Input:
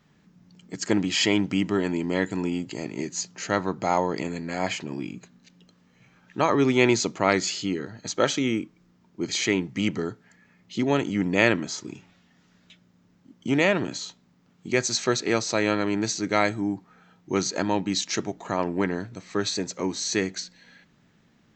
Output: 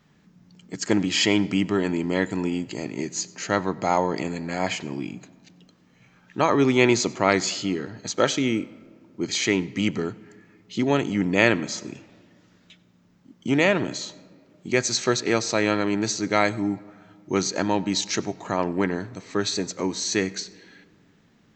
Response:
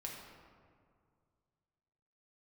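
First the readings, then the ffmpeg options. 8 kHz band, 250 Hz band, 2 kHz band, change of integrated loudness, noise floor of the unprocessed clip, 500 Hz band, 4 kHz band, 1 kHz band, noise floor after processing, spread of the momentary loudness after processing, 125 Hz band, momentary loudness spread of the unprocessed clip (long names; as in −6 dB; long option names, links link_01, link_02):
+1.5 dB, +1.5 dB, +1.5 dB, +1.5 dB, −62 dBFS, +1.5 dB, +1.5 dB, +1.5 dB, −59 dBFS, 13 LU, +1.5 dB, 13 LU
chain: -filter_complex "[0:a]asplit=2[link_01][link_02];[1:a]atrim=start_sample=2205,adelay=94[link_03];[link_02][link_03]afir=irnorm=-1:irlink=0,volume=-18.5dB[link_04];[link_01][link_04]amix=inputs=2:normalize=0,volume=1.5dB"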